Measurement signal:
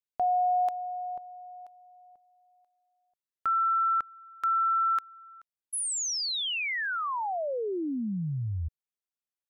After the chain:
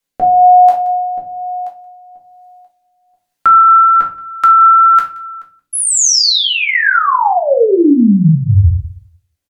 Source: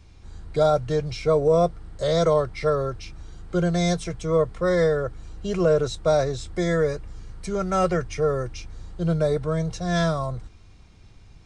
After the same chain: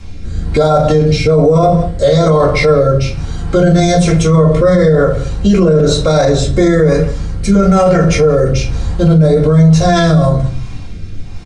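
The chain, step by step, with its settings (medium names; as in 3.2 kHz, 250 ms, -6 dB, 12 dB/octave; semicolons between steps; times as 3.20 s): simulated room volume 190 m³, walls furnished, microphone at 2.2 m; rotary cabinet horn 1.1 Hz; on a send: delay 176 ms -22 dB; on the sum: loudness maximiser +19 dB; trim -1 dB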